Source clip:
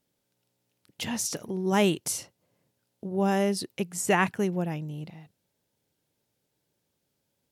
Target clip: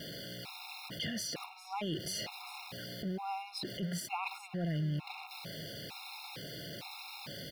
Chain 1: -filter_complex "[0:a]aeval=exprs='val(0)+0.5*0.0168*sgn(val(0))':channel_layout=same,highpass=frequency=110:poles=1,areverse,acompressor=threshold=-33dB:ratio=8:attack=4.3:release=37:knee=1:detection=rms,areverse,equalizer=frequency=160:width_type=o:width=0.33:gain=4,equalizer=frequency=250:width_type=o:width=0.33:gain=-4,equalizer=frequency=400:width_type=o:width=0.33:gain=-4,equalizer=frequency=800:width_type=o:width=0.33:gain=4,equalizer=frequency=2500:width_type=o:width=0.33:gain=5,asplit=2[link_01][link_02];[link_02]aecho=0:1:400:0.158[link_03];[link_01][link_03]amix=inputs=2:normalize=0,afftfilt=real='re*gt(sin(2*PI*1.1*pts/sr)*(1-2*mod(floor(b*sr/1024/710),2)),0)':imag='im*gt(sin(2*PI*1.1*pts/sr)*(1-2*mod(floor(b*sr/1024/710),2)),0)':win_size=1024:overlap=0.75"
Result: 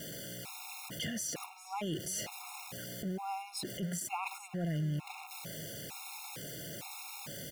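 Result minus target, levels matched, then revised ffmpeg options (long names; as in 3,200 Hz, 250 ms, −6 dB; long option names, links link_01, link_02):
8,000 Hz band +5.0 dB
-filter_complex "[0:a]aeval=exprs='val(0)+0.5*0.0168*sgn(val(0))':channel_layout=same,highpass=frequency=110:poles=1,highshelf=frequency=5600:width_type=q:width=3:gain=-7,areverse,acompressor=threshold=-33dB:ratio=8:attack=4.3:release=37:knee=1:detection=rms,areverse,equalizer=frequency=160:width_type=o:width=0.33:gain=4,equalizer=frequency=250:width_type=o:width=0.33:gain=-4,equalizer=frequency=400:width_type=o:width=0.33:gain=-4,equalizer=frequency=800:width_type=o:width=0.33:gain=4,equalizer=frequency=2500:width_type=o:width=0.33:gain=5,asplit=2[link_01][link_02];[link_02]aecho=0:1:400:0.158[link_03];[link_01][link_03]amix=inputs=2:normalize=0,afftfilt=real='re*gt(sin(2*PI*1.1*pts/sr)*(1-2*mod(floor(b*sr/1024/710),2)),0)':imag='im*gt(sin(2*PI*1.1*pts/sr)*(1-2*mod(floor(b*sr/1024/710),2)),0)':win_size=1024:overlap=0.75"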